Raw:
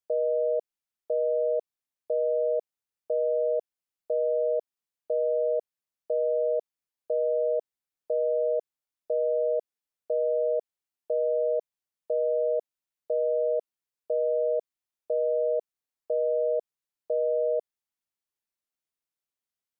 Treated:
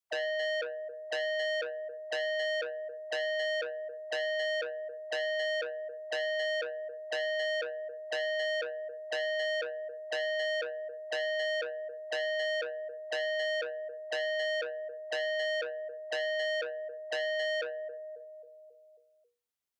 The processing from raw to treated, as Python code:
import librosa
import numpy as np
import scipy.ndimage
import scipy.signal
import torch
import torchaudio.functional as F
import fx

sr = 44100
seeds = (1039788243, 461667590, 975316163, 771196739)

p1 = fx.hum_notches(x, sr, base_hz=60, count=8)
p2 = fx.dispersion(p1, sr, late='lows', ms=50.0, hz=470.0)
p3 = p2 + fx.echo_feedback(p2, sr, ms=271, feedback_pct=55, wet_db=-13.5, dry=0)
y = fx.transformer_sat(p3, sr, knee_hz=2700.0)